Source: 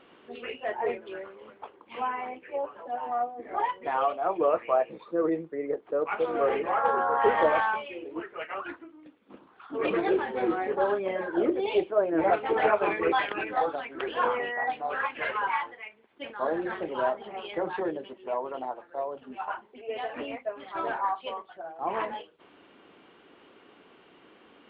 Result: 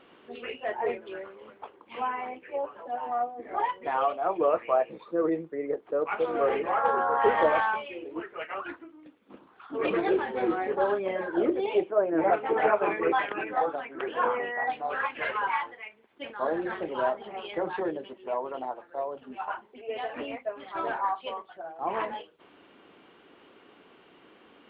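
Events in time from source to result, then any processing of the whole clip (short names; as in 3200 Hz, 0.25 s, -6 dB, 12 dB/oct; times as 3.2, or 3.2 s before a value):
11.66–14.55 BPF 110–2500 Hz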